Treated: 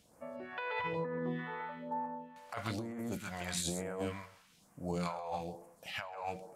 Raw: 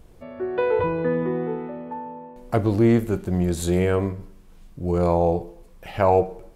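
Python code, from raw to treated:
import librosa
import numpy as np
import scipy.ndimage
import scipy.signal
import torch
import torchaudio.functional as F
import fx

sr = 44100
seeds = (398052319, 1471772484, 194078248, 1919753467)

y = fx.peak_eq(x, sr, hz=380.0, db=-15.0, octaves=0.45)
y = y + 10.0 ** (-4.0 / 20.0) * np.pad(y, (int(133 * sr / 1000.0), 0))[:len(y)]
y = fx.phaser_stages(y, sr, stages=2, low_hz=220.0, high_hz=3500.0, hz=1.1, feedback_pct=30)
y = fx.weighting(y, sr, curve='A')
y = fx.over_compress(y, sr, threshold_db=-34.0, ratio=-1.0)
y = F.gain(torch.from_numpy(y), -4.0).numpy()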